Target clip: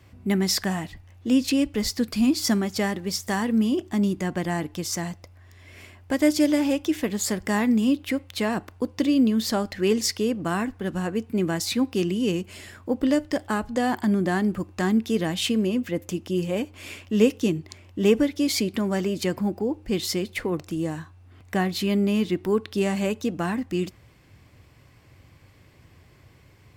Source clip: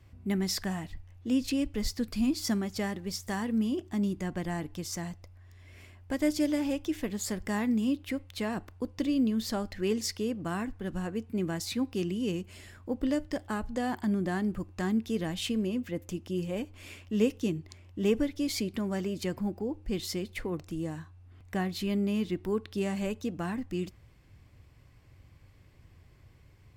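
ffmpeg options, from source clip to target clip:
ffmpeg -i in.wav -af "highpass=frequency=150:poles=1,volume=8.5dB" out.wav

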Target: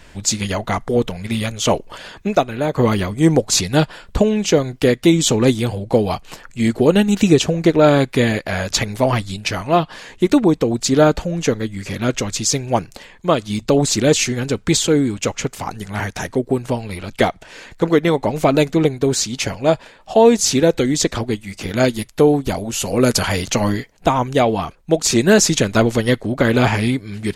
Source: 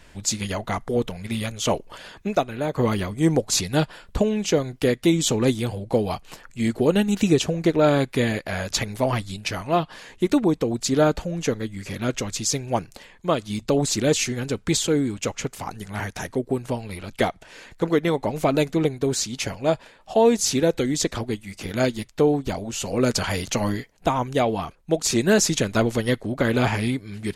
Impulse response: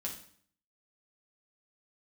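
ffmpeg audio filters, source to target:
-af "asetnsamples=nb_out_samples=441:pad=0,asendcmd='21.88 equalizer g 9.5;23.28 equalizer g -3.5',equalizer=frequency=11000:width=2.7:gain=-4.5,volume=6dB"

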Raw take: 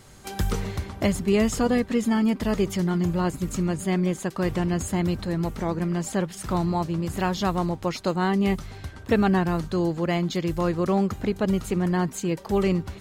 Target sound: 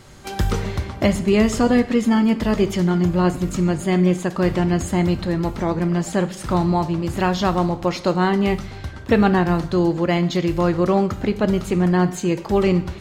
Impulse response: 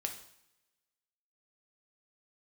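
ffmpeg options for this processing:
-filter_complex "[0:a]asplit=2[link_01][link_02];[1:a]atrim=start_sample=2205,lowpass=7100[link_03];[link_02][link_03]afir=irnorm=-1:irlink=0,volume=-0.5dB[link_04];[link_01][link_04]amix=inputs=2:normalize=0"

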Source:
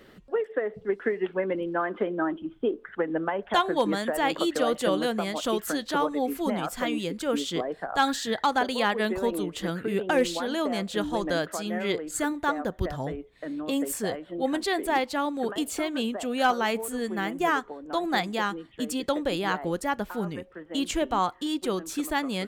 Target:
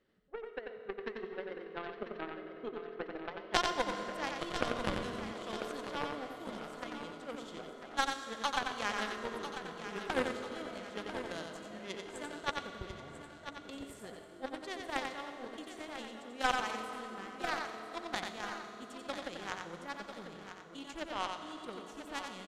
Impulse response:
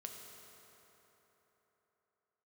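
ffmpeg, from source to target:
-filter_complex "[0:a]aeval=exprs='0.316*(cos(1*acos(clip(val(0)/0.316,-1,1)))-cos(1*PI/2))+0.0282*(cos(2*acos(clip(val(0)/0.316,-1,1)))-cos(2*PI/2))+0.126*(cos(3*acos(clip(val(0)/0.316,-1,1)))-cos(3*PI/2))+0.0158*(cos(5*acos(clip(val(0)/0.316,-1,1)))-cos(5*PI/2))+0.00178*(cos(8*acos(clip(val(0)/0.316,-1,1)))-cos(8*PI/2))':channel_layout=same,lowpass=9600,aecho=1:1:994|1988|2982|3976:0.316|0.13|0.0532|0.0218,asplit=2[link_01][link_02];[1:a]atrim=start_sample=2205,adelay=90[link_03];[link_02][link_03]afir=irnorm=-1:irlink=0,volume=1dB[link_04];[link_01][link_04]amix=inputs=2:normalize=0,asettb=1/sr,asplit=3[link_05][link_06][link_07];[link_05]atrim=end=4.254[link_08];[link_06]atrim=start=4.25:end=5.33,asetpts=PTS-STARTPTS,afade=type=in:duration=0.004:curve=qsin,afade=type=out:start_time=1.076:duration=0.004:curve=qsin,asubboost=boost=10:cutoff=220[link_09];[link_07]atrim=start=5.326[link_10];[link_08][link_09]acrossfade=duration=0.004:curve1=hsin:curve2=qsin[link_11];[link_11][link_10]acrossfade=duration=0.004:curve1=qsin:curve2=hsin,volume=1.5dB"

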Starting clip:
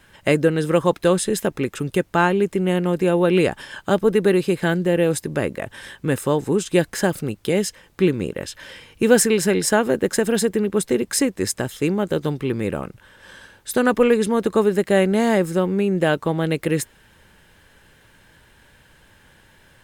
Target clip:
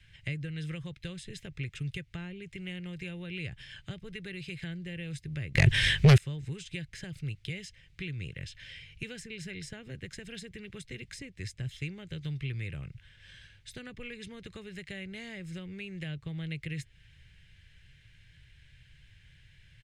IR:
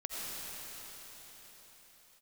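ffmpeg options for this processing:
-filter_complex "[0:a]acrossover=split=290|730[link_01][link_02][link_03];[link_01]acompressor=threshold=-30dB:ratio=4[link_04];[link_02]acompressor=threshold=-28dB:ratio=4[link_05];[link_03]acompressor=threshold=-34dB:ratio=4[link_06];[link_04][link_05][link_06]amix=inputs=3:normalize=0,firequalizer=gain_entry='entry(140,0);entry(210,-20);entry(940,-28);entry(2100,-3);entry(14000,-28)':delay=0.05:min_phase=1,asettb=1/sr,asplit=3[link_07][link_08][link_09];[link_07]atrim=end=5.554[link_10];[link_08]atrim=start=5.55:end=6.18,asetpts=PTS-STARTPTS,afade=type=in:duration=0.004:curve=qsin,afade=type=out:start_time=0.626:duration=0.004:curve=qsin,aeval=exprs='0.211*sin(PI/2*7.94*val(0)/0.211)':channel_layout=same[link_11];[link_09]atrim=start=6.176[link_12];[link_10][link_11]acrossfade=duration=0.004:curve1=hsin:curve2=qsin[link_13];[link_13][link_12]acrossfade=duration=0.004:curve1=qsin:curve2=hsin"

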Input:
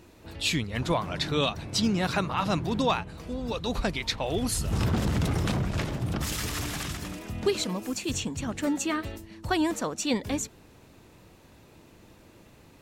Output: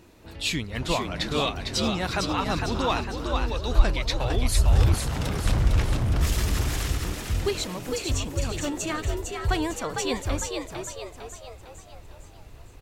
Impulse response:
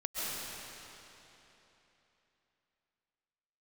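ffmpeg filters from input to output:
-filter_complex "[0:a]asettb=1/sr,asplit=3[link_01][link_02][link_03];[link_01]atrim=end=4.944[link_04];[link_02]atrim=start=4.94:end=5.46,asetpts=PTS-STARTPTS,afade=type=in:duration=0.004:curve=qsin,afade=type=out:start_time=0.516:duration=0.004:curve=qsin,lowshelf=frequency=430:gain=-11.5[link_05];[link_03]atrim=start=5.456[link_06];[link_04][link_05]acrossfade=duration=0.004:curve1=hsin:curve2=qsin[link_07];[link_07][link_06]acrossfade=duration=0.004:curve1=qsin:curve2=hsin,asplit=7[link_08][link_09][link_10][link_11][link_12][link_13][link_14];[link_09]adelay=454,afreqshift=79,volume=-4.5dB[link_15];[link_10]adelay=908,afreqshift=158,volume=-11.1dB[link_16];[link_11]adelay=1362,afreqshift=237,volume=-17.6dB[link_17];[link_12]adelay=1816,afreqshift=316,volume=-24.2dB[link_18];[link_13]adelay=2270,afreqshift=395,volume=-30.7dB[link_19];[link_14]adelay=2724,afreqshift=474,volume=-37.3dB[link_20];[link_08][link_15][link_16][link_17][link_18][link_19][link_20]amix=inputs=7:normalize=0,asubboost=boost=11:cutoff=60"

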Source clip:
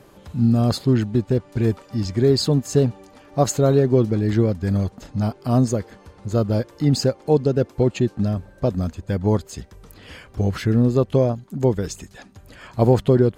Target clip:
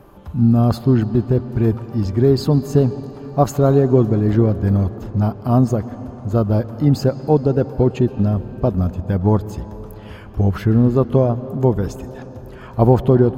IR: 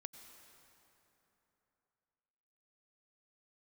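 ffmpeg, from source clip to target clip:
-filter_complex "[0:a]equalizer=frequency=125:width_type=o:width=1:gain=-5,equalizer=frequency=250:width_type=o:width=1:gain=-4,equalizer=frequency=500:width_type=o:width=1:gain=-7,equalizer=frequency=2000:width_type=o:width=1:gain=-10,equalizer=frequency=4000:width_type=o:width=1:gain=-8,equalizer=frequency=8000:width_type=o:width=1:gain=-11,asplit=2[link_01][link_02];[1:a]atrim=start_sample=2205,asetrate=32193,aresample=44100,lowpass=4100[link_03];[link_02][link_03]afir=irnorm=-1:irlink=0,volume=0.5dB[link_04];[link_01][link_04]amix=inputs=2:normalize=0,volume=5dB"

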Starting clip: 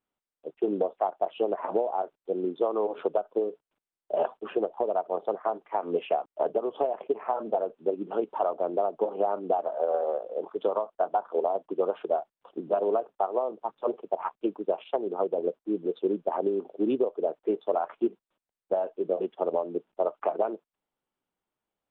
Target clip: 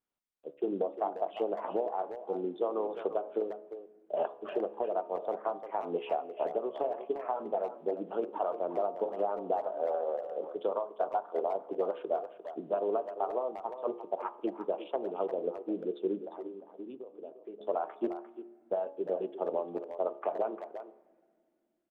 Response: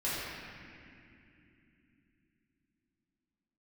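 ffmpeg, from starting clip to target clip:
-filter_complex "[0:a]bandreject=frequency=70.47:width_type=h:width=4,bandreject=frequency=140.94:width_type=h:width=4,bandreject=frequency=211.41:width_type=h:width=4,bandreject=frequency=281.88:width_type=h:width=4,bandreject=frequency=352.35:width_type=h:width=4,bandreject=frequency=422.82:width_type=h:width=4,bandreject=frequency=493.29:width_type=h:width=4,bandreject=frequency=563.76:width_type=h:width=4,bandreject=frequency=634.23:width_type=h:width=4,bandreject=frequency=704.7:width_type=h:width=4,bandreject=frequency=775.17:width_type=h:width=4,bandreject=frequency=845.64:width_type=h:width=4,bandreject=frequency=916.11:width_type=h:width=4,bandreject=frequency=986.58:width_type=h:width=4,bandreject=frequency=1057.05:width_type=h:width=4,bandreject=frequency=1127.52:width_type=h:width=4,bandreject=frequency=1197.99:width_type=h:width=4,bandreject=frequency=1268.46:width_type=h:width=4,asettb=1/sr,asplit=3[link_01][link_02][link_03];[link_01]atrim=end=16.184[link_04];[link_02]atrim=start=16.18:end=17.61,asetpts=PTS-STARTPTS,afade=type=in:duration=0.004:curve=qsin,afade=type=out:start_time=1.426:duration=0.004:curve=qsin,acompressor=threshold=-40dB:ratio=4[link_05];[link_03]atrim=start=17.606[link_06];[link_04][link_05]acrossfade=duration=0.004:curve1=hsin:curve2=qsin[link_07];[link_07][link_06]acrossfade=duration=0.004:curve1=qsin:curve2=hsin,asplit=2[link_08][link_09];[link_09]adelay=350,highpass=300,lowpass=3400,asoftclip=type=hard:threshold=-19.5dB,volume=-10dB[link_10];[link_08][link_10]amix=inputs=2:normalize=0,asplit=2[link_11][link_12];[1:a]atrim=start_sample=2205[link_13];[link_12][link_13]afir=irnorm=-1:irlink=0,volume=-28dB[link_14];[link_11][link_14]amix=inputs=2:normalize=0,volume=-5dB"

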